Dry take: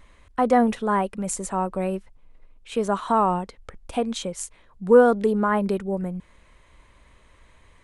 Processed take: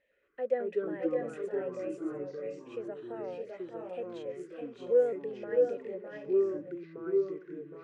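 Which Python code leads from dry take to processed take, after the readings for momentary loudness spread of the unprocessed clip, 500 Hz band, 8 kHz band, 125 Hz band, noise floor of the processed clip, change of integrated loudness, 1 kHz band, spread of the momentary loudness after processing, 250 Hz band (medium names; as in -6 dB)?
17 LU, -6.5 dB, under -30 dB, -19.0 dB, -58 dBFS, -11.0 dB, -23.5 dB, 13 LU, -13.0 dB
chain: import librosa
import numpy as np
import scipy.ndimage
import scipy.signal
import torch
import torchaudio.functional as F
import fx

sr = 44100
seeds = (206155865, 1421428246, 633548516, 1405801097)

y = fx.vowel_filter(x, sr, vowel='e')
y = fx.echo_multitap(y, sr, ms=(608, 630, 698), db=(-6.5, -5.0, -16.0))
y = fx.echo_pitch(y, sr, ms=112, semitones=-4, count=2, db_per_echo=-3.0)
y = F.gain(torch.from_numpy(y), -6.0).numpy()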